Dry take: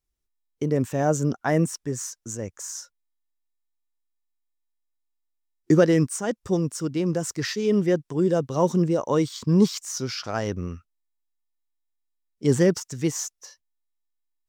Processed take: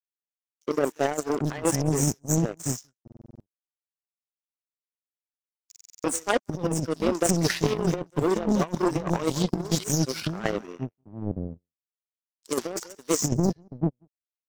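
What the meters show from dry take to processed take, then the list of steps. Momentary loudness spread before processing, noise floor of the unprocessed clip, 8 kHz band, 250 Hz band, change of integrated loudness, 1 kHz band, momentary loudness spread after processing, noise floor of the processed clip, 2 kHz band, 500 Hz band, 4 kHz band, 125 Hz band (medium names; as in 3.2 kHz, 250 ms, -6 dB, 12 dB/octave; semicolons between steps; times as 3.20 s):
13 LU, -80 dBFS, +2.5 dB, -3.0 dB, -2.5 dB, +0.5 dB, 10 LU, under -85 dBFS, 0.0 dB, -3.5 dB, +1.0 dB, -2.0 dB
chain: coarse spectral quantiser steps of 30 dB; on a send: delay 185 ms -19.5 dB; on the sum: waveshaping leveller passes 2; high-pass 73 Hz 24 dB/octave; three bands offset in time highs, mids, lows 60/790 ms, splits 300/4600 Hz; power-law waveshaper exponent 2; compressor with a negative ratio -30 dBFS, ratio -0.5; buffer glitch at 3.03/5.67 s, samples 2048, times 7; trim +6.5 dB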